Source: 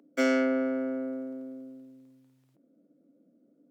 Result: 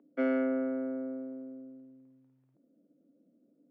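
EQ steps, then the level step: low-pass 1.6 kHz 6 dB/octave; distance through air 390 m; -2.5 dB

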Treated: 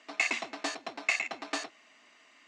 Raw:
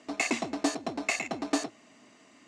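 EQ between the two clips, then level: band-pass filter 2.3 kHz, Q 0.75; +2.5 dB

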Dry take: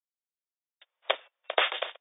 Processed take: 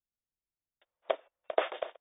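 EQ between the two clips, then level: dynamic bell 650 Hz, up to +5 dB, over -44 dBFS, Q 6.4; tilt EQ -5.5 dB/octave; -6.0 dB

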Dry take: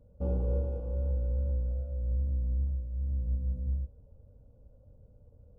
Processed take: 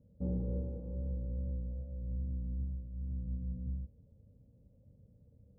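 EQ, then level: band-pass filter 180 Hz, Q 1.3; +2.5 dB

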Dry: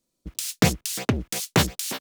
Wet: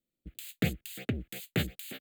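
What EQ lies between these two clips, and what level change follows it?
peaking EQ 9.7 kHz -11 dB 0.23 oct; static phaser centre 2.4 kHz, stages 4; -8.5 dB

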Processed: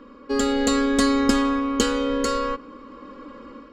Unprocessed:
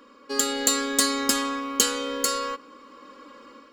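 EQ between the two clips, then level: RIAA curve playback; peaking EQ 14 kHz -14 dB 0.3 oct; +3.5 dB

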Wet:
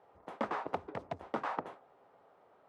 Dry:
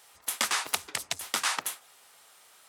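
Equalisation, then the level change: Chebyshev low-pass 570 Hz, order 2; bass shelf 82 Hz -5.5 dB; +6.5 dB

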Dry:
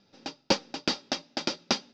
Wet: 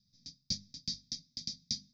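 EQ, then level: Chebyshev band-stop 120–6900 Hz, order 2; hum notches 50/100/150/200/250 Hz; static phaser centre 1.9 kHz, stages 8; +1.5 dB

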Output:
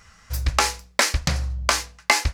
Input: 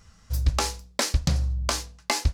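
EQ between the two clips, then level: FFT filter 250 Hz 0 dB, 2.1 kHz +13 dB, 3.5 kHz +6 dB; -1.0 dB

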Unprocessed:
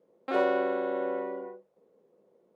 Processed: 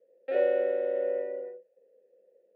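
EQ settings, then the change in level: vowel filter e; high-pass 140 Hz; +7.0 dB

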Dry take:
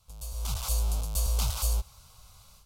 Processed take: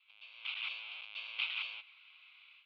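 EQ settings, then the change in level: resonant high-pass 2.4 kHz, resonance Q 5; steep low-pass 3.4 kHz 48 dB/octave; 0.0 dB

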